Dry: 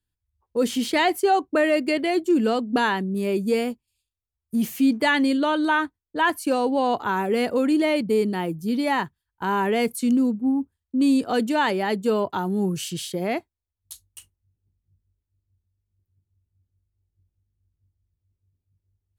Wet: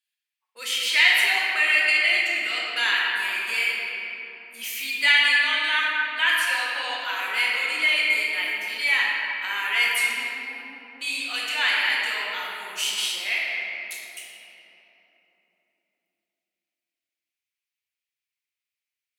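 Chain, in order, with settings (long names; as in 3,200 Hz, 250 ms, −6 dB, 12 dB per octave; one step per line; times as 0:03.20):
high-pass with resonance 2,300 Hz, resonance Q 2.7
rectangular room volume 220 cubic metres, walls hard, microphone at 0.93 metres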